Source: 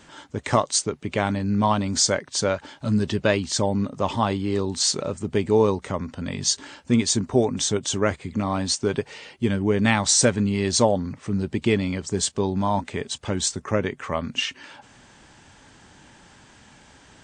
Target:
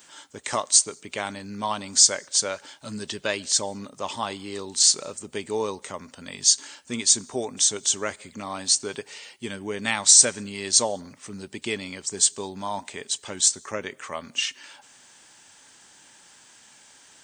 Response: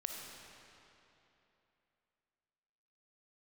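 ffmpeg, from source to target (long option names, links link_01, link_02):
-filter_complex "[0:a]aemphasis=mode=production:type=riaa,asplit=2[link_01][link_02];[1:a]atrim=start_sample=2205,afade=type=out:start_time=0.34:duration=0.01,atrim=end_sample=15435,asetrate=57330,aresample=44100[link_03];[link_02][link_03]afir=irnorm=-1:irlink=0,volume=-18.5dB[link_04];[link_01][link_04]amix=inputs=2:normalize=0,volume=-6dB"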